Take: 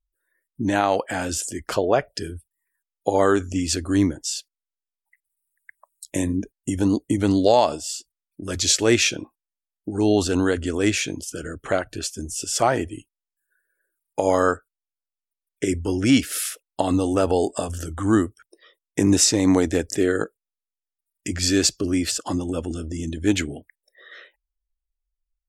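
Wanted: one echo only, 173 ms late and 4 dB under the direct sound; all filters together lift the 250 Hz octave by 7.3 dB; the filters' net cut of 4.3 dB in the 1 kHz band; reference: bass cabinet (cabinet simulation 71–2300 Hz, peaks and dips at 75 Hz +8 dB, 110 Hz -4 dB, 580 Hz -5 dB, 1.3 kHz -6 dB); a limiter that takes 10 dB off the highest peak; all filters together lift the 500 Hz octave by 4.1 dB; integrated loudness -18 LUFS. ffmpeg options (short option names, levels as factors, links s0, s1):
-af "equalizer=f=250:t=o:g=7.5,equalizer=f=500:t=o:g=6.5,equalizer=f=1000:t=o:g=-8,alimiter=limit=0.335:level=0:latency=1,highpass=f=71:w=0.5412,highpass=f=71:w=1.3066,equalizer=f=75:t=q:w=4:g=8,equalizer=f=110:t=q:w=4:g=-4,equalizer=f=580:t=q:w=4:g=-5,equalizer=f=1300:t=q:w=4:g=-6,lowpass=f=2300:w=0.5412,lowpass=f=2300:w=1.3066,aecho=1:1:173:0.631,volume=1.33"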